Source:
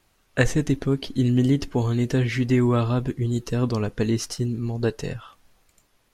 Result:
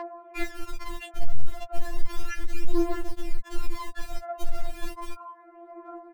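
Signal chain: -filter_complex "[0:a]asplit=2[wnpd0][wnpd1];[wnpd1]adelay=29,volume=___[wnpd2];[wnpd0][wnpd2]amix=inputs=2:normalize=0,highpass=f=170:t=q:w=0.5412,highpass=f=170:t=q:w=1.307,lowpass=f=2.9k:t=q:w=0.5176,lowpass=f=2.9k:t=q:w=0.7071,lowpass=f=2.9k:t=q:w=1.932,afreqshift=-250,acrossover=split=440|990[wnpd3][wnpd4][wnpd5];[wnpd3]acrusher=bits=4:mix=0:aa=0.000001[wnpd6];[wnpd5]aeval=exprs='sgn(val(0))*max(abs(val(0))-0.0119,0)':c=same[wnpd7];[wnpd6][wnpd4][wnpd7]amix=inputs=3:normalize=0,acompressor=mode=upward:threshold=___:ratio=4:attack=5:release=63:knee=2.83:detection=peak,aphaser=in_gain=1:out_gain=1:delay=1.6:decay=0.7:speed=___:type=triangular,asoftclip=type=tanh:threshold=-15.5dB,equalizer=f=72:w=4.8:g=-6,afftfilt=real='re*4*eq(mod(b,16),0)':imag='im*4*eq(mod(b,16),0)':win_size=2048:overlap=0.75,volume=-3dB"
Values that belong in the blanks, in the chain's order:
-9dB, -27dB, 0.34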